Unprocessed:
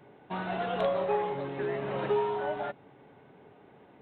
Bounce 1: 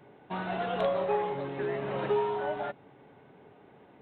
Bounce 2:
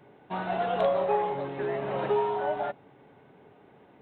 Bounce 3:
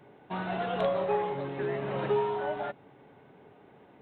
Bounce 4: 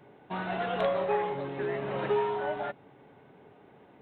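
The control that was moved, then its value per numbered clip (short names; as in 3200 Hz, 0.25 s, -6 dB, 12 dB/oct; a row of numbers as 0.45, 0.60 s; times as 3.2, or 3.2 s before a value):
dynamic EQ, frequency: 9400, 720, 140, 1900 Hz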